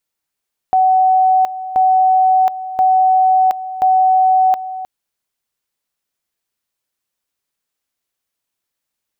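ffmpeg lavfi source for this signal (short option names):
-f lavfi -i "aevalsrc='pow(10,(-8.5-14*gte(mod(t,1.03),0.72))/20)*sin(2*PI*751*t)':d=4.12:s=44100"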